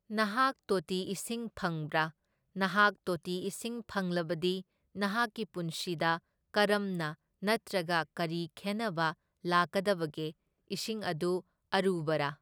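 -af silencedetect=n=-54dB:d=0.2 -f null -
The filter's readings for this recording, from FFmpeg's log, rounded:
silence_start: 2.11
silence_end: 2.56 | silence_duration: 0.45
silence_start: 4.62
silence_end: 4.95 | silence_duration: 0.33
silence_start: 6.19
silence_end: 6.54 | silence_duration: 0.36
silence_start: 7.14
silence_end: 7.42 | silence_duration: 0.28
silence_start: 9.14
silence_end: 9.44 | silence_duration: 0.30
silence_start: 10.32
silence_end: 10.71 | silence_duration: 0.39
silence_start: 11.41
silence_end: 11.72 | silence_duration: 0.32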